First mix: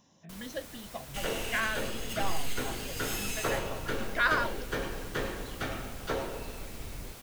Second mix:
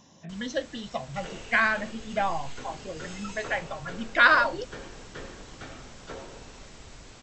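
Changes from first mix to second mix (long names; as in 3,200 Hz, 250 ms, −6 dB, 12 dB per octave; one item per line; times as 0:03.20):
speech +8.5 dB
second sound −8.0 dB
master: add linear-phase brick-wall low-pass 8,100 Hz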